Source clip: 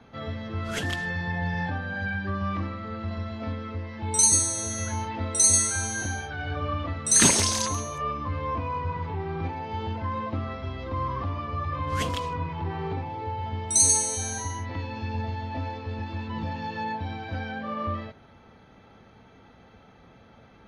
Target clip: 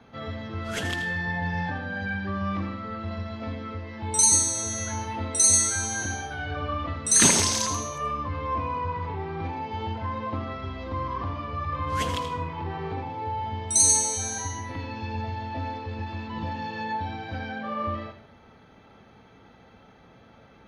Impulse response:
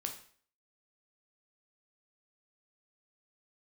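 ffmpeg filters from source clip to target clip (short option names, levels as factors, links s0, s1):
-filter_complex "[0:a]lowshelf=f=130:g=-3,asplit=2[s0][s1];[1:a]atrim=start_sample=2205,adelay=81[s2];[s1][s2]afir=irnorm=-1:irlink=0,volume=0.398[s3];[s0][s3]amix=inputs=2:normalize=0"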